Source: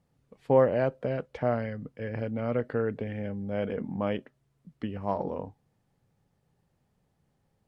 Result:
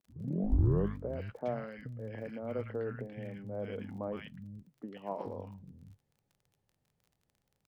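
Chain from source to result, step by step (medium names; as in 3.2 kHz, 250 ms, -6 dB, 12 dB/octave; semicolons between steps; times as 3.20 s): tape start-up on the opening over 1.11 s; three bands offset in time mids, highs, lows 110/430 ms, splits 180/1200 Hz; crackle 28 per s -46 dBFS; trim -7 dB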